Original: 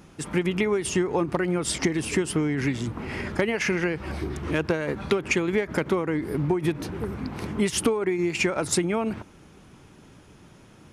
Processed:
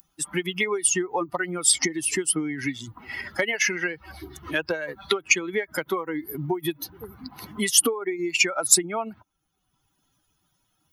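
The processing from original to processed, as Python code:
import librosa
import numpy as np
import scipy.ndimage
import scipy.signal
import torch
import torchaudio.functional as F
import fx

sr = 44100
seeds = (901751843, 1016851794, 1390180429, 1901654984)

y = fx.bin_expand(x, sr, power=2.0)
y = fx.riaa(y, sr, side='recording')
y = fx.band_squash(y, sr, depth_pct=40)
y = y * 10.0 ** (5.5 / 20.0)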